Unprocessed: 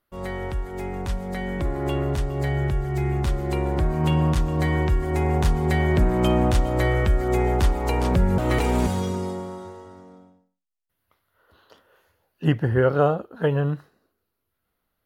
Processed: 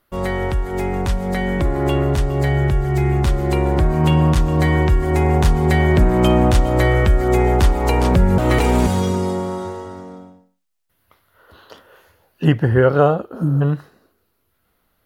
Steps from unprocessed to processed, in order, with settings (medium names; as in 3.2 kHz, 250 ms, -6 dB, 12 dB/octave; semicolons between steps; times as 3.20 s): spectral replace 13.38–13.59 s, 350–4800 Hz before; in parallel at +3 dB: compression, threshold -31 dBFS, peak gain reduction 16.5 dB; on the sum: trim +3.5 dB